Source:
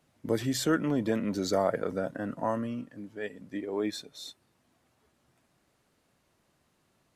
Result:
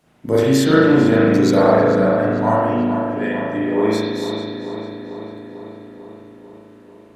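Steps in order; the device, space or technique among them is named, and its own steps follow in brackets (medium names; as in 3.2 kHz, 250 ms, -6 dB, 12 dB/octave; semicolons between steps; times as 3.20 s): dub delay into a spring reverb (filtered feedback delay 444 ms, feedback 69%, low-pass 3.6 kHz, level -9 dB; spring tank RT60 1.3 s, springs 37 ms, chirp 70 ms, DRR -7.5 dB); trim +6.5 dB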